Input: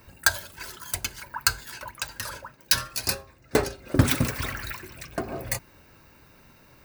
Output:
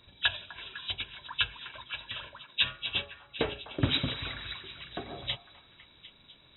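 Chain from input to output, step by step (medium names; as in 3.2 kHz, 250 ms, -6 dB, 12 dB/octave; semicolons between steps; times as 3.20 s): knee-point frequency compression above 2.1 kHz 4:1; speed mistake 24 fps film run at 25 fps; repeats whose band climbs or falls 251 ms, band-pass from 1 kHz, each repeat 0.7 oct, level -10 dB; trim -8.5 dB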